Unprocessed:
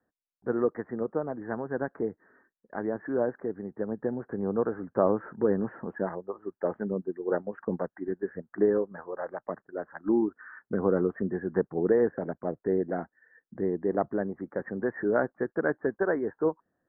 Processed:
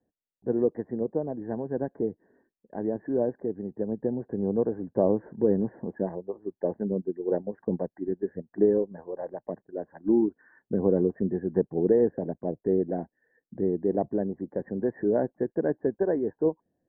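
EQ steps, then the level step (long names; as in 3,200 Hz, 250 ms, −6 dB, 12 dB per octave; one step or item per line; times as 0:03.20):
moving average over 34 samples
+3.5 dB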